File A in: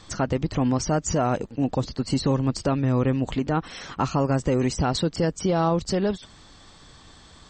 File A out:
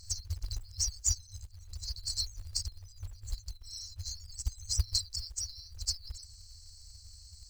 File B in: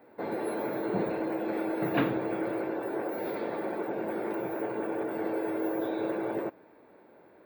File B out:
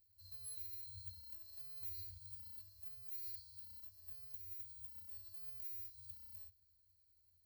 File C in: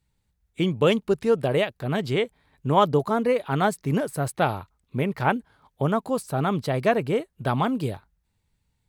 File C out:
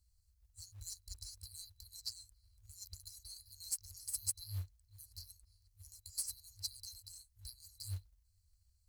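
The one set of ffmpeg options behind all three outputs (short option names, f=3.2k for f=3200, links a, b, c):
-af "afftfilt=real='re*(1-between(b*sr/4096,100,4000))':imag='im*(1-between(b*sr/4096,100,4000))':win_size=4096:overlap=0.75,acrusher=bits=5:mode=log:mix=0:aa=0.000001,volume=1dB"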